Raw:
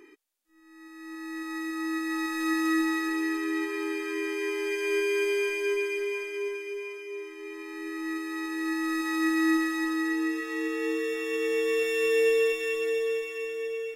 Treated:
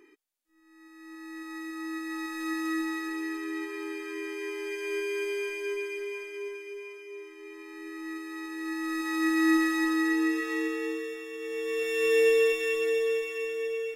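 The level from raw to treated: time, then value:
0:08.58 −5 dB
0:09.66 +2 dB
0:10.53 +2 dB
0:11.34 −10 dB
0:12.13 +1 dB

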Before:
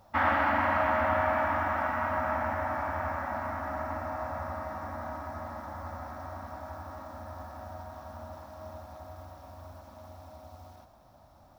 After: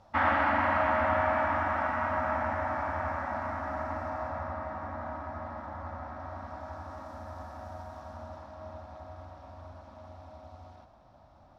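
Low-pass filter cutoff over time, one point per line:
0:04.06 6,400 Hz
0:04.58 3,300 Hz
0:06.12 3,300 Hz
0:07.11 8,700 Hz
0:07.92 8,700 Hz
0:08.57 4,200 Hz

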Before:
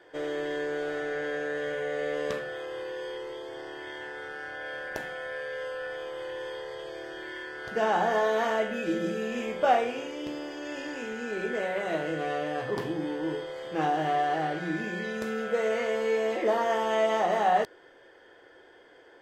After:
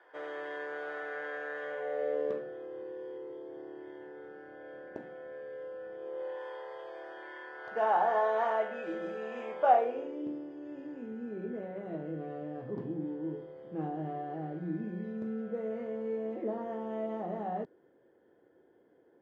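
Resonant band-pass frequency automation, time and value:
resonant band-pass, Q 1.4
0:01.60 1,100 Hz
0:02.55 280 Hz
0:05.98 280 Hz
0:06.42 850 Hz
0:09.63 850 Hz
0:10.45 200 Hz

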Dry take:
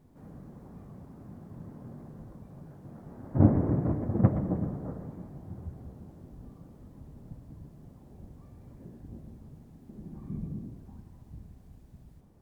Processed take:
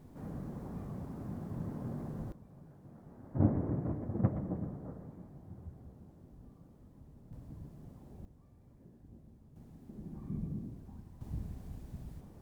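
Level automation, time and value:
+5 dB
from 0:02.32 −7.5 dB
from 0:07.33 −1 dB
from 0:08.25 −10.5 dB
from 0:09.56 −2 dB
from 0:11.21 +6.5 dB

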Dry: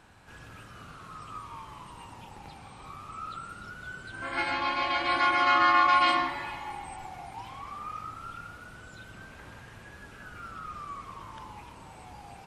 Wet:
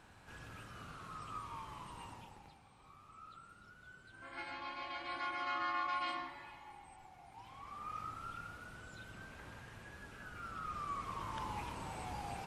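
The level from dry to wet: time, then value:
0:02.08 −4 dB
0:02.63 −16 dB
0:07.19 −16 dB
0:08.00 −5 dB
0:10.35 −5 dB
0:11.57 +3 dB

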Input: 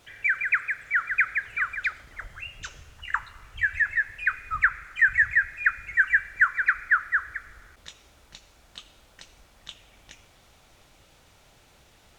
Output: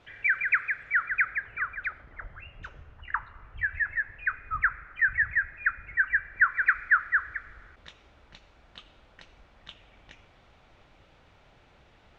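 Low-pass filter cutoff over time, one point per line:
0:00.71 2,900 Hz
0:01.54 1,500 Hz
0:06.22 1,500 Hz
0:06.72 2,800 Hz

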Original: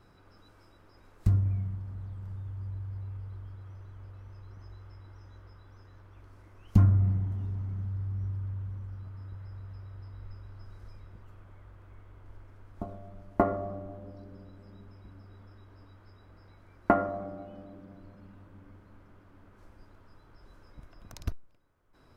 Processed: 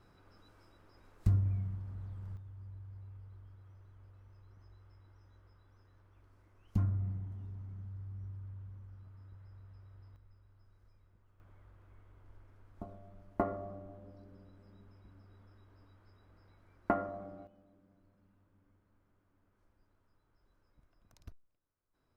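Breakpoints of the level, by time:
−4 dB
from 0:02.37 −11 dB
from 0:10.16 −17.5 dB
from 0:11.40 −8 dB
from 0:17.47 −18 dB

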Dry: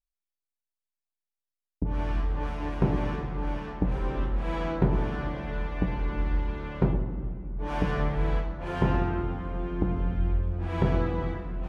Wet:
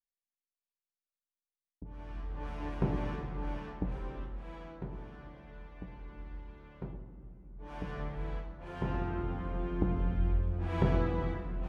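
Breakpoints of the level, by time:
0:01.97 −17.5 dB
0:02.59 −6.5 dB
0:03.66 −6.5 dB
0:04.73 −18 dB
0:07.19 −18 dB
0:08.03 −11.5 dB
0:08.75 −11.5 dB
0:09.41 −3.5 dB

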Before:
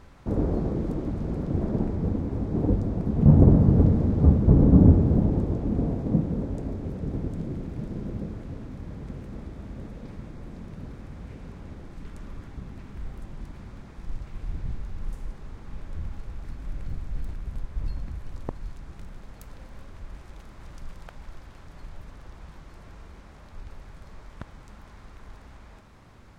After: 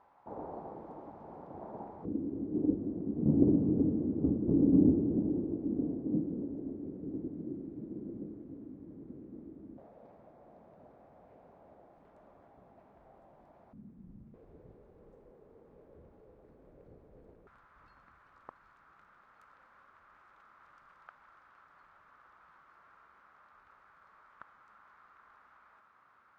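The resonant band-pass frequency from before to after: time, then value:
resonant band-pass, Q 3.7
850 Hz
from 0:02.05 310 Hz
from 0:09.78 680 Hz
from 0:13.73 210 Hz
from 0:14.34 470 Hz
from 0:17.47 1,300 Hz

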